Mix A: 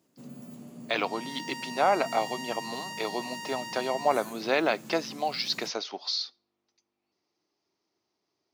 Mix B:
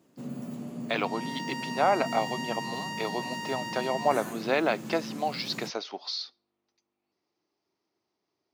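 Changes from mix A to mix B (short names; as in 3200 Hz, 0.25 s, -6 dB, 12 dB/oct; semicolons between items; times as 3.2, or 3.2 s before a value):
first sound +7.5 dB; second sound +4.0 dB; master: add high shelf 4800 Hz -8 dB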